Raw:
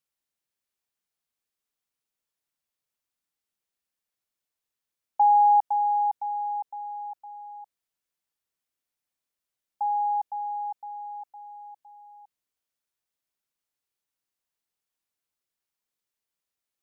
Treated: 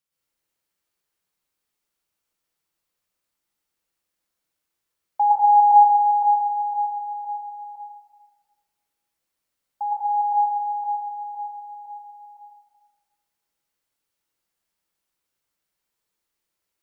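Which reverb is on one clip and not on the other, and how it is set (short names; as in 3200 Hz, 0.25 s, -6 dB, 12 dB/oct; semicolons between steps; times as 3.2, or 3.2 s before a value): plate-style reverb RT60 1.4 s, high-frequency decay 0.55×, pre-delay 95 ms, DRR -7 dB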